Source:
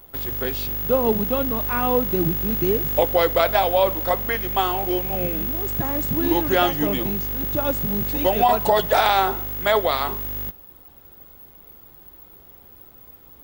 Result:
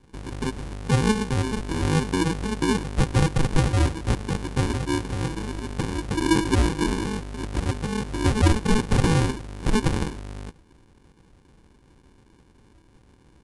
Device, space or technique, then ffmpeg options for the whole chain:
crushed at another speed: -af "asetrate=88200,aresample=44100,acrusher=samples=34:mix=1:aa=0.000001,asetrate=22050,aresample=44100,volume=0.891"

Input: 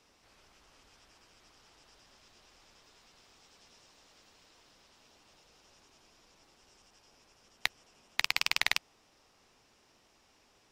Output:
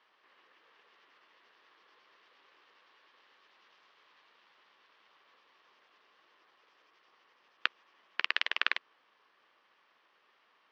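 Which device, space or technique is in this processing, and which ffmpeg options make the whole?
voice changer toy: -af "aeval=exprs='val(0)*sin(2*PI*420*n/s+420*0.2/6*sin(2*PI*6*n/s))':c=same,highpass=420,equalizer=f=700:t=q:w=4:g=-4,equalizer=f=1100:t=q:w=4:g=8,equalizer=f=1800:t=q:w=4:g=6,equalizer=f=2900:t=q:w=4:g=3,lowpass=f=3800:w=0.5412,lowpass=f=3800:w=1.3066"

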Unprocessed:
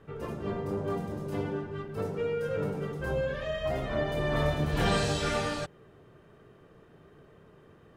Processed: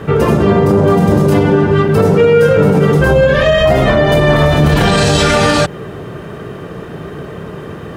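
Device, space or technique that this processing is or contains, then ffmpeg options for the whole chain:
mastering chain: -af "highpass=44,equalizer=f=180:t=o:w=0.41:g=3,acompressor=threshold=0.0224:ratio=2,alimiter=level_in=29.9:limit=0.891:release=50:level=0:latency=1,volume=0.891"

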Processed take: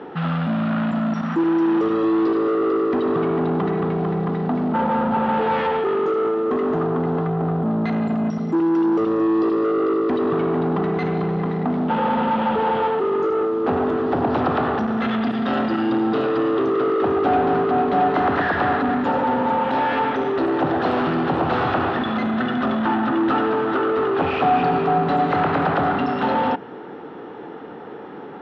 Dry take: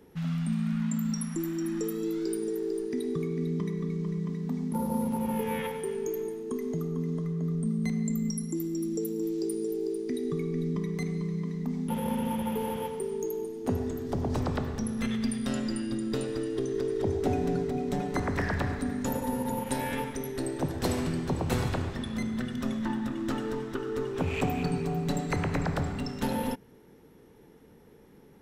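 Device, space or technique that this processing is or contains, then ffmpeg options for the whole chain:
overdrive pedal into a guitar cabinet: -filter_complex "[0:a]asplit=2[s0][s1];[s1]highpass=f=720:p=1,volume=35.5,asoftclip=type=tanh:threshold=0.188[s2];[s0][s2]amix=inputs=2:normalize=0,lowpass=f=2300:p=1,volume=0.501,highpass=85,equalizer=f=310:t=q:w=4:g=5,equalizer=f=750:t=q:w=4:g=8,equalizer=f=1300:t=q:w=4:g=7,equalizer=f=2200:t=q:w=4:g=-7,lowpass=f=3400:w=0.5412,lowpass=f=3400:w=1.3066"

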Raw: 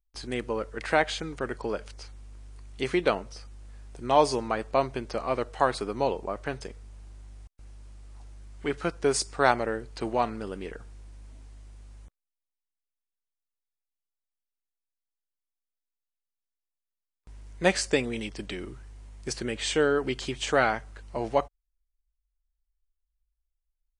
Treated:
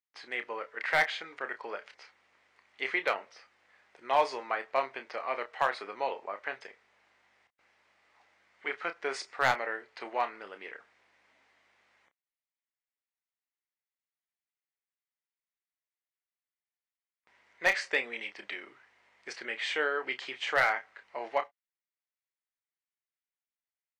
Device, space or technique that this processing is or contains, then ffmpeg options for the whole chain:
megaphone: -filter_complex "[0:a]highpass=680,lowpass=3400,equalizer=f=2000:t=o:w=0.49:g=8.5,asoftclip=type=hard:threshold=0.188,asplit=2[s0][s1];[s1]adelay=30,volume=0.335[s2];[s0][s2]amix=inputs=2:normalize=0,volume=0.75"

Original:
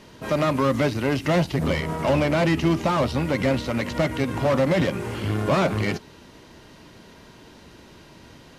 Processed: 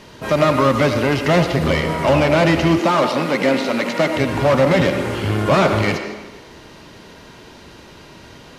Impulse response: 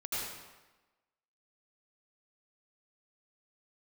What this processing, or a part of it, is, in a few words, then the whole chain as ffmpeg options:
filtered reverb send: -filter_complex "[0:a]asplit=2[s0][s1];[s1]highpass=f=230:w=0.5412,highpass=f=230:w=1.3066,lowpass=8000[s2];[1:a]atrim=start_sample=2205[s3];[s2][s3]afir=irnorm=-1:irlink=0,volume=0.398[s4];[s0][s4]amix=inputs=2:normalize=0,asettb=1/sr,asplit=3[s5][s6][s7];[s5]atrim=end=2.794[s8];[s6]atrim=start=2.79:end=4.17,asetpts=PTS-STARTPTS,afade=t=in:d=0.004:c=qsin,afade=t=out:st=1.376:d=0.004:c=qsin,highpass=f=180:w=0.5412,highpass=f=180:w=1.3066[s9];[s7]atrim=start=4.166[s10];[s8][s9]acrossfade=d=0.004:c1=hsin:c2=qsin[s11];[s11][s10]acrossfade=d=0.004:c1=qsin:c2=hsin,volume=1.78"

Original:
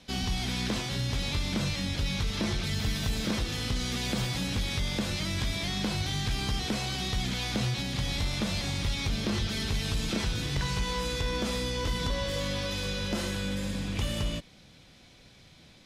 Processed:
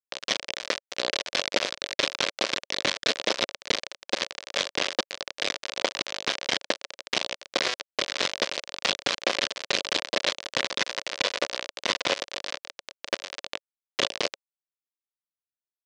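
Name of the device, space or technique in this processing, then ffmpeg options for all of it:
hand-held game console: -af "acrusher=bits=3:mix=0:aa=0.000001,highpass=440,equalizer=f=560:t=q:w=4:g=6,equalizer=f=840:t=q:w=4:g=-6,equalizer=f=1300:t=q:w=4:g=-3,lowpass=f=5400:w=0.5412,lowpass=f=5400:w=1.3066,volume=2.51"

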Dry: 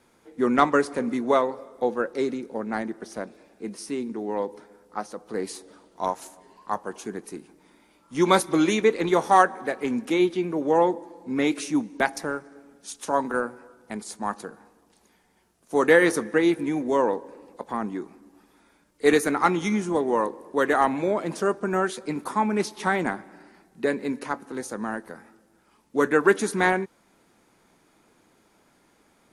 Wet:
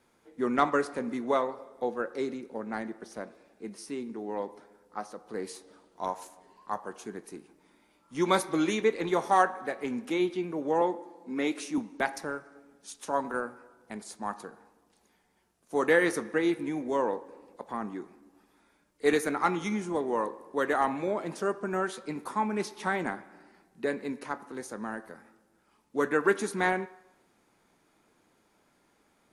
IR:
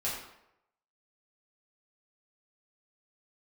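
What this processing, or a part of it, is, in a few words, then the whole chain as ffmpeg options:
filtered reverb send: -filter_complex "[0:a]asettb=1/sr,asplit=3[s0][s1][s2];[s0]atrim=end=10.814[s3];[s1]atrim=start=10.81:end=11.78,asetpts=PTS-STARTPTS,afade=t=in:d=0.004:c=qsin,afade=t=out:st=0.966:d=0.004:c=qsin,highpass=f=170:w=0.5412,highpass=f=170:w=1.3066[s4];[s2]atrim=start=11.776[s5];[s3][s4]acrossfade=d=0.004:c1=hsin:c2=qsin[s6];[s6][s5]acrossfade=d=0.004:c1=qsin:c2=hsin,asplit=2[s7][s8];[s8]highpass=390,lowpass=5100[s9];[1:a]atrim=start_sample=2205[s10];[s9][s10]afir=irnorm=-1:irlink=0,volume=0.141[s11];[s7][s11]amix=inputs=2:normalize=0,volume=0.473"

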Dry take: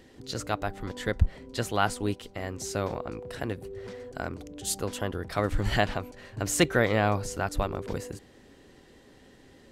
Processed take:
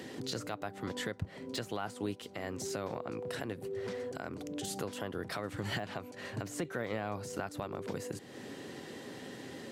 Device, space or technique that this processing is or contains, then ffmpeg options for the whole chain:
podcast mastering chain: -af "highpass=f=96:w=0.5412,highpass=f=96:w=1.3066,highpass=99,deesser=0.9,acompressor=threshold=0.00316:ratio=2.5,alimiter=level_in=3.35:limit=0.0631:level=0:latency=1:release=171,volume=0.299,volume=3.35" -ar 48000 -c:a libmp3lame -b:a 96k

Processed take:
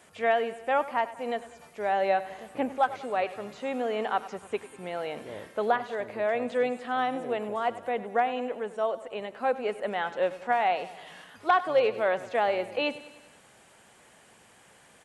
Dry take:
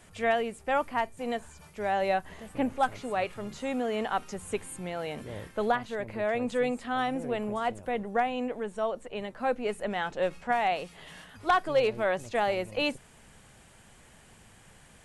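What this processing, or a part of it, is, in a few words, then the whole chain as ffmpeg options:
filter by subtraction: -filter_complex "[0:a]aecho=1:1:98|196|294|392|490:0.158|0.0872|0.0479|0.0264|0.0145,asplit=2[s0][s1];[s1]lowpass=520,volume=-1[s2];[s0][s2]amix=inputs=2:normalize=0,acrossover=split=4300[s3][s4];[s4]acompressor=threshold=0.00126:ratio=4:attack=1:release=60[s5];[s3][s5]amix=inputs=2:normalize=0"

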